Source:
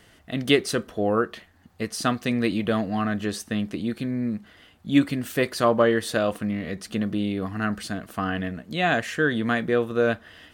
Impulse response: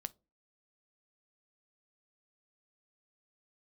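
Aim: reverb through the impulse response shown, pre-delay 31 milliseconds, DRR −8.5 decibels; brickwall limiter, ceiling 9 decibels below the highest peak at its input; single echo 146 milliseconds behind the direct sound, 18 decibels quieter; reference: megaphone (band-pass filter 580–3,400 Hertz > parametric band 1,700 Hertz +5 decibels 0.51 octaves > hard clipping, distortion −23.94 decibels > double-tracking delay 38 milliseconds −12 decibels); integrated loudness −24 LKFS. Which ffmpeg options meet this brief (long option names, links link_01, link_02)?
-filter_complex "[0:a]alimiter=limit=-15dB:level=0:latency=1,aecho=1:1:146:0.126,asplit=2[link_01][link_02];[1:a]atrim=start_sample=2205,adelay=31[link_03];[link_02][link_03]afir=irnorm=-1:irlink=0,volume=11.5dB[link_04];[link_01][link_04]amix=inputs=2:normalize=0,highpass=580,lowpass=3400,equalizer=frequency=1700:width_type=o:width=0.51:gain=5,asoftclip=type=hard:threshold=-9dB,asplit=2[link_05][link_06];[link_06]adelay=38,volume=-12dB[link_07];[link_05][link_07]amix=inputs=2:normalize=0,volume=-2.5dB"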